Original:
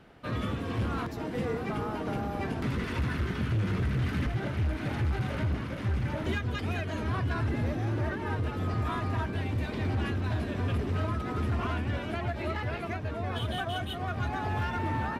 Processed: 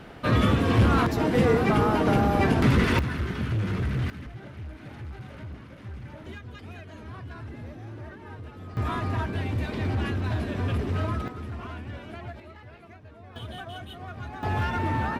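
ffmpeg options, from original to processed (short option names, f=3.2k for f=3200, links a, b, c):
-af "asetnsamples=n=441:p=0,asendcmd='2.99 volume volume 1.5dB;4.1 volume volume -10dB;8.77 volume volume 2.5dB;11.28 volume volume -6.5dB;12.4 volume volume -14dB;13.36 volume volume -6dB;14.43 volume volume 4dB',volume=11dB"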